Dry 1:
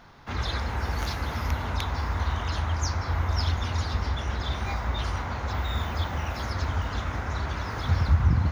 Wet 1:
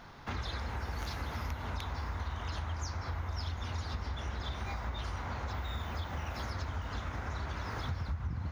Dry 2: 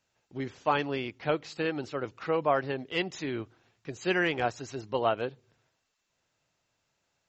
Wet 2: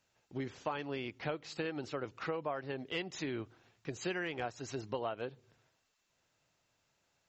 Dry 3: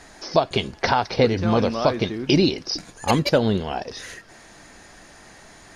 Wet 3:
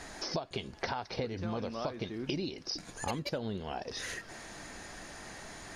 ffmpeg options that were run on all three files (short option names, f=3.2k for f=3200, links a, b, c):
-af "acompressor=threshold=-35dB:ratio=5"